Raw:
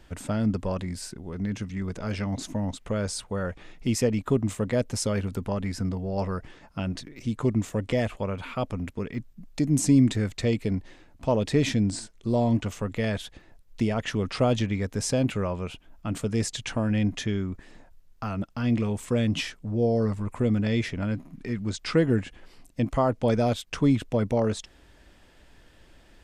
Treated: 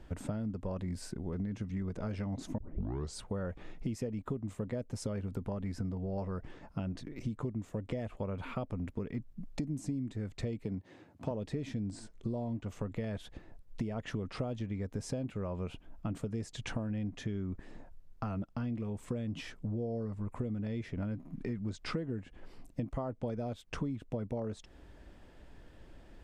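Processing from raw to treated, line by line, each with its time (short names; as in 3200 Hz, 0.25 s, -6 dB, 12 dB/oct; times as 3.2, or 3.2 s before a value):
2.58 tape start 0.58 s
10.64–11.31 HPF 91 Hz 24 dB/oct
whole clip: tilt shelf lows +5.5 dB, about 1400 Hz; compressor 12:1, threshold -29 dBFS; gain -4 dB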